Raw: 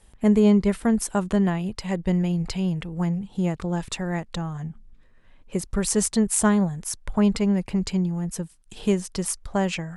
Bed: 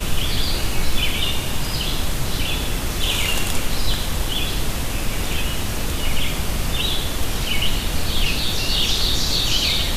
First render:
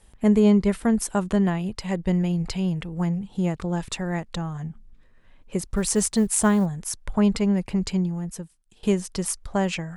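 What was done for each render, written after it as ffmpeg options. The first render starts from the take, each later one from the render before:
-filter_complex "[0:a]asettb=1/sr,asplit=3[a][b][c];[a]atrim=end=5.764[d];[b]atrim=start=5.76:end=6.66,asetpts=PTS-STARTPTS,afade=t=in:d=0.004:c=qsin,afade=t=out:st=0.896:d=0.004:c=qsin,acrusher=bits=9:mode=log:mix=0:aa=0.000001[e];[c]atrim=start=6.656[f];[d][e]acrossfade=d=0.004:c1=hsin:c2=qsin[g];[g][f]acrossfade=d=0.004:c1=qsin:c2=hsin,asplit=2[h][i];[h]atrim=end=8.83,asetpts=PTS-STARTPTS,afade=t=out:st=8:d=0.83:silence=0.0944061[j];[i]atrim=start=8.83,asetpts=PTS-STARTPTS,afade=t=in:d=0.004:c=hsin:silence=0.0944061[k];[j][k]concat=n=2:v=0:a=1"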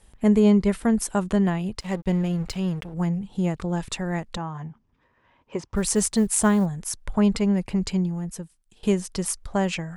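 -filter_complex "[0:a]asettb=1/sr,asplit=3[a][b][c];[a]atrim=end=1.804[d];[b]atrim=start=1.8:end=2.94,asetpts=PTS-STARTPTS,afade=t=in:d=0.004:c=qsin,afade=t=out:st=1.136:d=0.004:c=qsin,aeval=exprs='sgn(val(0))*max(abs(val(0))-0.01,0)':c=same[e];[c]atrim=start=2.936[f];[d][e]acrossfade=d=0.004:c1=hsin:c2=qsin[g];[g][f]acrossfade=d=0.004:c1=qsin:c2=hsin,asettb=1/sr,asplit=3[h][i][j];[h]atrim=end=4.374[k];[i]atrim=start=4.37:end=5.75,asetpts=PTS-STARTPTS,afade=t=in:d=0.004:c=qsin,afade=t=out:st=1.376:d=0.004:c=qsin,highpass=100,equalizer=f=190:t=q:w=4:g=-9,equalizer=f=970:t=q:w=4:g=10,equalizer=f=4.1k:t=q:w=4:g=-7,lowpass=f=5.7k:w=0.5412,lowpass=f=5.7k:w=1.3066[l];[j]atrim=start=5.746[m];[k][l]acrossfade=d=0.004:c1=hsin:c2=qsin[n];[n][m]acrossfade=d=0.004:c1=qsin:c2=hsin"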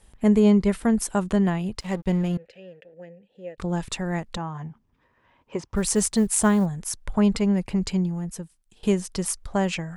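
-filter_complex "[0:a]asettb=1/sr,asplit=3[a][b][c];[a]atrim=end=2.374[d];[b]atrim=start=2.37:end=3.58,asetpts=PTS-STARTPTS,afade=t=in:d=0.004:c=qsin,afade=t=out:st=1.206:d=0.004:c=qsin,asplit=3[e][f][g];[e]bandpass=f=530:t=q:w=8,volume=0dB[h];[f]bandpass=f=1.84k:t=q:w=8,volume=-6dB[i];[g]bandpass=f=2.48k:t=q:w=8,volume=-9dB[j];[h][i][j]amix=inputs=3:normalize=0[k];[c]atrim=start=3.576[l];[d][k]acrossfade=d=0.004:c1=hsin:c2=qsin[m];[m][l]acrossfade=d=0.004:c1=qsin:c2=hsin"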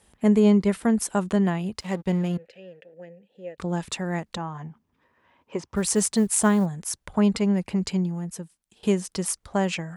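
-af "highpass=84,equalizer=f=120:w=3.3:g=-7"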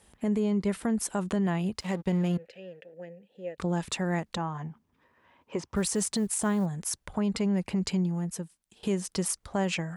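-af "acompressor=threshold=-23dB:ratio=2.5,alimiter=limit=-19.5dB:level=0:latency=1:release=29"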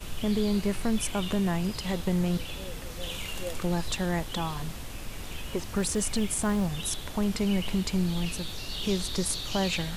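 -filter_complex "[1:a]volume=-15.5dB[a];[0:a][a]amix=inputs=2:normalize=0"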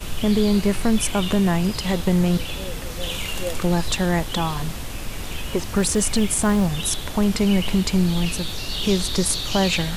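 -af "volume=8dB"

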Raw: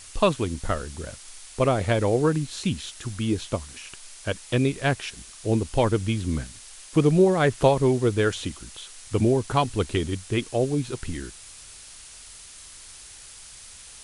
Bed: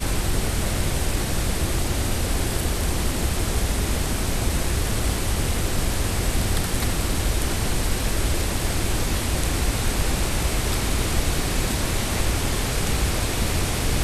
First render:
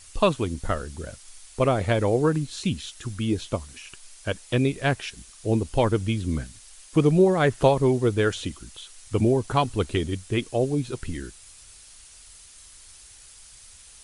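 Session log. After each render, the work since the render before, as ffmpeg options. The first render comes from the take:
-af "afftdn=nr=6:nf=-45"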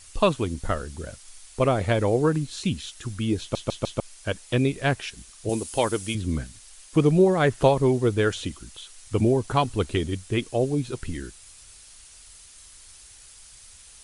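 -filter_complex "[0:a]asettb=1/sr,asplit=3[a][b][c];[a]atrim=end=5.494[d];[b]atrim=start=5.49:end=6.15,asetpts=PTS-STARTPTS,afade=t=in:d=0.004:c=qsin,afade=t=out:st=0.656:d=0.004:c=qsin,aemphasis=mode=production:type=bsi[e];[c]atrim=start=6.146[f];[d][e]acrossfade=d=0.004:c1=hsin:c2=qsin[g];[g][f]acrossfade=d=0.004:c1=qsin:c2=hsin,asplit=5[h][i][j][k][l];[h]atrim=end=3.552[m];[i]atrim=start=3.398:end=3.552[n];[j]atrim=start=3.398:end=3.552[o];[k]atrim=start=3.398:end=3.552[p];[l]atrim=start=3.998[q];[m][n]acrossfade=d=0.004:c1=hsin:c2=hsin[r];[r][o]acrossfade=d=0.004:c1=hsin:c2=hsin[s];[s][p]acrossfade=d=0.004:c1=hsin:c2=hsin[t];[t][q]acrossfade=d=0.004:c1=hsin:c2=hsin"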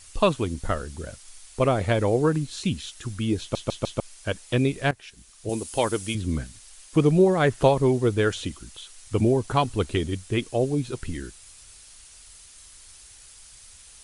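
-filter_complex "[0:a]asplit=2[a][b];[a]atrim=end=4.91,asetpts=PTS-STARTPTS,afade=t=out:st=4.906:d=0.004:c=hsin:silence=0.141254[c];[b]atrim=start=4.91,asetpts=PTS-STARTPTS,afade=t=in:d=1.13:c=qsin:silence=0.141254[d];[c][d]concat=n=2:v=0:a=1"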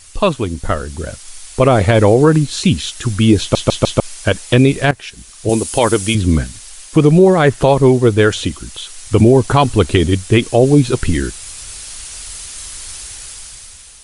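-af "dynaudnorm=f=370:g=5:m=11.5dB,alimiter=level_in=7dB:limit=-1dB:release=50:level=0:latency=1"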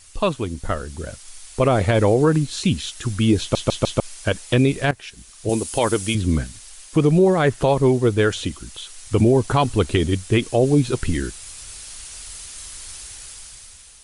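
-af "volume=-6.5dB"

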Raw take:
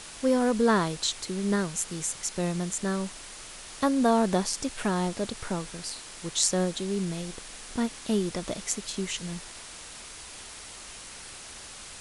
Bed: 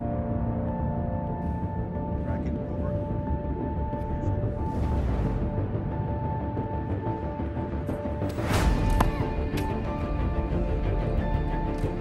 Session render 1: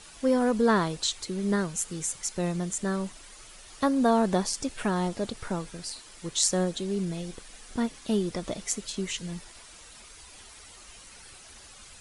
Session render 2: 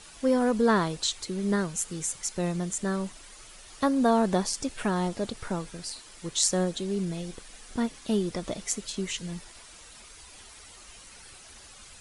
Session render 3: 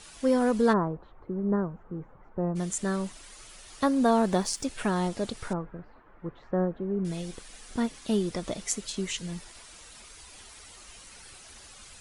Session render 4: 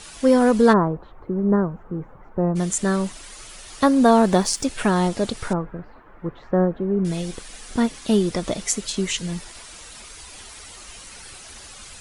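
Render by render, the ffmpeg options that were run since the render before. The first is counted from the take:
-af "afftdn=nr=9:nf=-44"
-af anull
-filter_complex "[0:a]asplit=3[a][b][c];[a]afade=t=out:st=0.72:d=0.02[d];[b]lowpass=f=1.2k:w=0.5412,lowpass=f=1.2k:w=1.3066,afade=t=in:st=0.72:d=0.02,afade=t=out:st=2.55:d=0.02[e];[c]afade=t=in:st=2.55:d=0.02[f];[d][e][f]amix=inputs=3:normalize=0,asettb=1/sr,asplit=3[g][h][i];[g]atrim=end=4.054[j];[h]atrim=start=4.05:end=4.65,asetpts=PTS-STARTPTS,afade=t=in:d=0.004:c=qsin,afade=t=out:st=0.596:d=0.004:c=qsin,aeval=exprs='sgn(val(0))*max(abs(val(0))-0.00224,0)':c=same[k];[i]atrim=start=4.646[l];[j][k]acrossfade=d=0.004:c1=hsin:c2=qsin[m];[m][l]acrossfade=d=0.004:c1=qsin:c2=hsin,asettb=1/sr,asplit=3[n][o][p];[n]atrim=end=5.534[q];[o]atrim=start=5.53:end=7.05,asetpts=PTS-STARTPTS,afade=t=in:d=0.004:c=qsin,afade=t=out:st=1.516:d=0.004:c=qsin,lowpass=f=1.5k:w=0.5412,lowpass=f=1.5k:w=1.3066[r];[p]atrim=start=7.046[s];[q][r]acrossfade=d=0.004:c1=hsin:c2=qsin[t];[t][s]acrossfade=d=0.004:c1=qsin:c2=hsin"
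-af "volume=8dB,alimiter=limit=-3dB:level=0:latency=1"

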